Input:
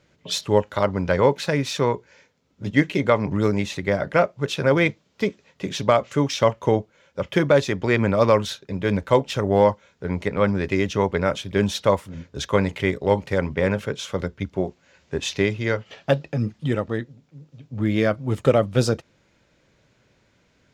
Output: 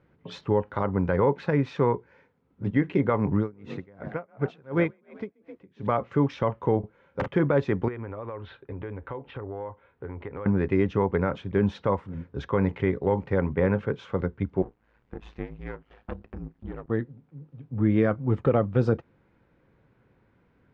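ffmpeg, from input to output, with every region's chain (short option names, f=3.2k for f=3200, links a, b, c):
-filter_complex "[0:a]asettb=1/sr,asplit=3[a][b][c];[a]atrim=end=3.384[d];[b]atrim=start=3.38:end=5.87,asetpts=PTS-STARTPTS,afade=t=in:d=0.004:c=qsin,afade=t=out:st=2.486:d=0.004:c=qsin,asplit=6[e][f][g][h][i][j];[f]adelay=129,afreqshift=32,volume=-14dB[k];[g]adelay=258,afreqshift=64,volume=-20.4dB[l];[h]adelay=387,afreqshift=96,volume=-26.8dB[m];[i]adelay=516,afreqshift=128,volume=-33.1dB[n];[j]adelay=645,afreqshift=160,volume=-39.5dB[o];[e][k][l][m][n][o]amix=inputs=6:normalize=0,atrim=end_sample=109809,aeval=exprs='val(0)*pow(10,-31*(0.5-0.5*cos(2*PI*2.8*n/s))/20)':c=same[p];[c]atrim=start=5.866[q];[d][p]acrossfade=d=0.004:c1=hsin:c2=qsin[r];[r][q]acrossfade=d=0.004:c1=qsin:c2=hsin,asettb=1/sr,asplit=3[s][t][u];[s]atrim=end=6.794[v];[t]atrim=start=6.79:end=7.28,asetpts=PTS-STARTPTS,afade=t=in:d=0.004:c=qsin,afade=t=out:st=0.486:d=0.004:c=qsin,aeval=exprs='(mod(5.96*val(0)+1,2)-1)/5.96':c=same,asplit=2[w][x];[x]adelay=43,volume=-6.5dB[y];[w][y]amix=inputs=2:normalize=0,atrim=end_sample=21609[z];[u]atrim=start=7.276[aa];[v][z]acrossfade=d=0.004:c1=hsin:c2=qsin[ab];[ab][aa]acrossfade=d=0.004:c1=qsin:c2=hsin,asettb=1/sr,asplit=3[ac][ad][ae];[ac]atrim=end=7.884[af];[ad]atrim=start=7.88:end=10.46,asetpts=PTS-STARTPTS,afade=t=in:d=0.004:c=qsin,afade=t=out:st=2.576:d=0.004:c=qsin,lowpass=f=3.6k:w=0.5412,lowpass=f=3.6k:w=1.3066,equalizer=f=190:t=o:w=0.46:g=-13.5,acompressor=threshold=-31dB:ratio=6:attack=3.2:release=140:knee=1:detection=peak[ag];[ae]atrim=start=10.456[ah];[af][ag]acrossfade=d=0.004:c1=hsin:c2=qsin[ai];[ai][ah]acrossfade=d=0.004:c1=qsin:c2=hsin,asettb=1/sr,asplit=3[aj][ak][al];[aj]atrim=end=14.624[am];[ak]atrim=start=14.62:end=16.9,asetpts=PTS-STARTPTS,afade=t=in:d=0.004:c=qsin,afade=t=out:st=2.276:d=0.004:c=qsin,aeval=exprs='if(lt(val(0),0),0.251*val(0),val(0))':c=same,acompressor=threshold=-41dB:ratio=1.5:attack=3.2:release=140:knee=1:detection=peak,aeval=exprs='val(0)*sin(2*PI*54*n/s)':c=same[an];[al]atrim=start=16.896[ao];[am][an]acrossfade=d=0.004:c1=hsin:c2=qsin[ap];[ap][ao]acrossfade=d=0.004:c1=qsin:c2=hsin,lowpass=1.4k,equalizer=f=610:w=7.5:g=-10,alimiter=limit=-11.5dB:level=0:latency=1:release=72"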